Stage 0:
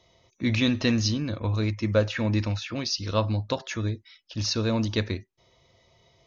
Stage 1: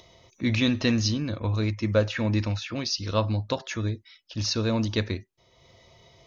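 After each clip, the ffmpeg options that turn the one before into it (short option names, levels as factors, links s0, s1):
-af "acompressor=mode=upward:threshold=0.00447:ratio=2.5"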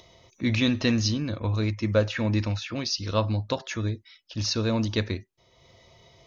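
-af anull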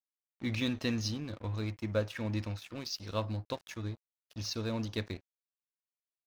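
-af "aeval=exprs='sgn(val(0))*max(abs(val(0))-0.0106,0)':c=same,volume=0.376"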